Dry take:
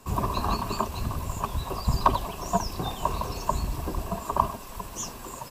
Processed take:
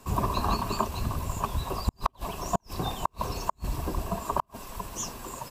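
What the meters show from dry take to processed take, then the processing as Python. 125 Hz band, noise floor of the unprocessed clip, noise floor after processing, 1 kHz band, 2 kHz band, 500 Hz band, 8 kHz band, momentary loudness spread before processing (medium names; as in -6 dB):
-1.5 dB, -42 dBFS, -66 dBFS, -2.5 dB, -1.5 dB, -2.0 dB, -1.0 dB, 9 LU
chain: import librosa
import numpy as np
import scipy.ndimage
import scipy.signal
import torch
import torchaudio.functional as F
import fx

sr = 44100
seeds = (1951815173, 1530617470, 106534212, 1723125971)

y = fx.gate_flip(x, sr, shuts_db=-12.0, range_db=-42)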